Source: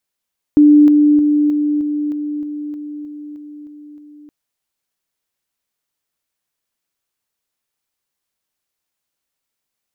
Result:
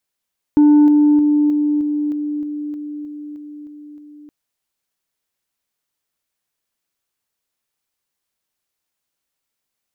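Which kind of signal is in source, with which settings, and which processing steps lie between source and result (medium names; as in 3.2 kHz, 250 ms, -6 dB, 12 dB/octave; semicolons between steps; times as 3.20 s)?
level ladder 296 Hz -4.5 dBFS, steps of -3 dB, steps 12, 0.31 s 0.00 s
saturation -6 dBFS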